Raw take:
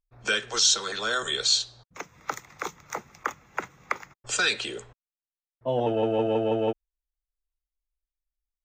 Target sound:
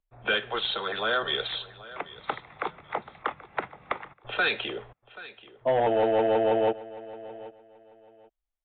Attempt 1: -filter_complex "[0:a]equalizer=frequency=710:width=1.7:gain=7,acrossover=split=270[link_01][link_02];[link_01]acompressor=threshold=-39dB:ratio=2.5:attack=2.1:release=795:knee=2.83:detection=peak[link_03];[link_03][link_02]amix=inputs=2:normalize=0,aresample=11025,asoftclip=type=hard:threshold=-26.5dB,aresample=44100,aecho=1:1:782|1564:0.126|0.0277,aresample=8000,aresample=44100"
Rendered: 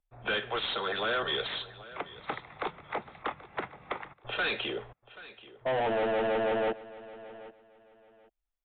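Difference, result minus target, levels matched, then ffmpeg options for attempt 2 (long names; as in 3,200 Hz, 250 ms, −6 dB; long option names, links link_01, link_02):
hard clipping: distortion +10 dB
-filter_complex "[0:a]equalizer=frequency=710:width=1.7:gain=7,acrossover=split=270[link_01][link_02];[link_01]acompressor=threshold=-39dB:ratio=2.5:attack=2.1:release=795:knee=2.83:detection=peak[link_03];[link_03][link_02]amix=inputs=2:normalize=0,aresample=11025,asoftclip=type=hard:threshold=-18dB,aresample=44100,aecho=1:1:782|1564:0.126|0.0277,aresample=8000,aresample=44100"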